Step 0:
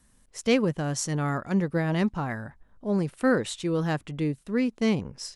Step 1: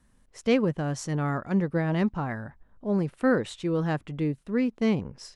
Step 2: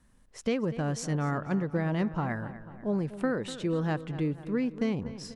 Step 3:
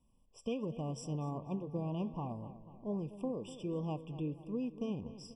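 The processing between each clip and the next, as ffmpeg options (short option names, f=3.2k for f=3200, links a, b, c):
-af "highshelf=f=4.2k:g=-11"
-filter_complex "[0:a]acompressor=threshold=-25dB:ratio=6,asplit=2[a][b];[b]adelay=245,lowpass=f=3.7k:p=1,volume=-14dB,asplit=2[c][d];[d]adelay=245,lowpass=f=3.7k:p=1,volume=0.55,asplit=2[e][f];[f]adelay=245,lowpass=f=3.7k:p=1,volume=0.55,asplit=2[g][h];[h]adelay=245,lowpass=f=3.7k:p=1,volume=0.55,asplit=2[i][j];[j]adelay=245,lowpass=f=3.7k:p=1,volume=0.55,asplit=2[k][l];[l]adelay=245,lowpass=f=3.7k:p=1,volume=0.55[m];[a][c][e][g][i][k][m]amix=inputs=7:normalize=0"
-af "flanger=delay=7.1:depth=6.6:regen=-86:speed=1.3:shape=triangular,afftfilt=real='re*eq(mod(floor(b*sr/1024/1200),2),0)':imag='im*eq(mod(floor(b*sr/1024/1200),2),0)':win_size=1024:overlap=0.75,volume=-4dB"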